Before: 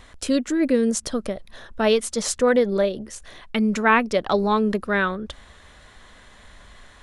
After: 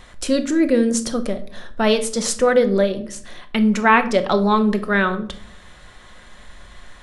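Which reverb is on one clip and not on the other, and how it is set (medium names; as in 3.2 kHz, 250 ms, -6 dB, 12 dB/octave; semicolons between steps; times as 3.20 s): simulated room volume 670 m³, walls furnished, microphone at 0.93 m; trim +2.5 dB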